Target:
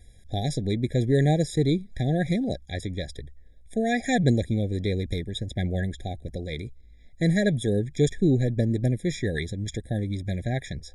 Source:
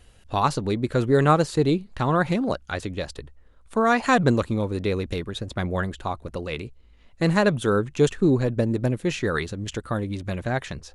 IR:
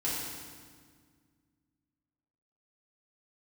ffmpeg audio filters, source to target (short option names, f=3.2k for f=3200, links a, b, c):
-af "equalizer=f=770:w=0.31:g=-9,afftfilt=real='re*eq(mod(floor(b*sr/1024/810),2),0)':imag='im*eq(mod(floor(b*sr/1024/810),2),0)':win_size=1024:overlap=0.75,volume=3.5dB"